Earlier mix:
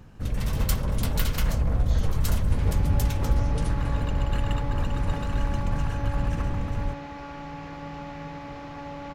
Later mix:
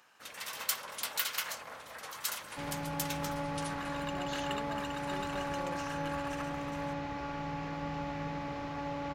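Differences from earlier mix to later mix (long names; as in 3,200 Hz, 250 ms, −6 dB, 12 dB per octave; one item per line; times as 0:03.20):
speech: entry +2.40 s
first sound: add high-pass filter 1,100 Hz 12 dB per octave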